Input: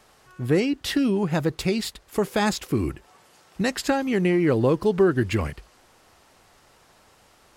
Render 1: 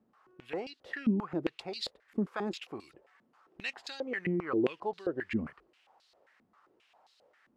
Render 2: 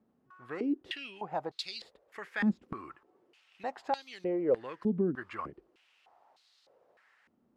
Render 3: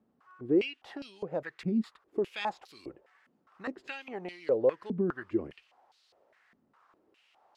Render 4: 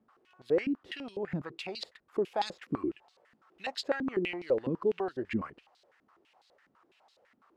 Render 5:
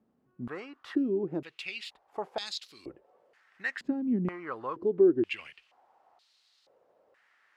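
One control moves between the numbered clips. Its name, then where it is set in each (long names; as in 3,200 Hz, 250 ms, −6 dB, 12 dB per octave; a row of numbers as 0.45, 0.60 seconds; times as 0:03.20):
band-pass on a step sequencer, speed: 7.5, 3.3, 4.9, 12, 2.1 Hertz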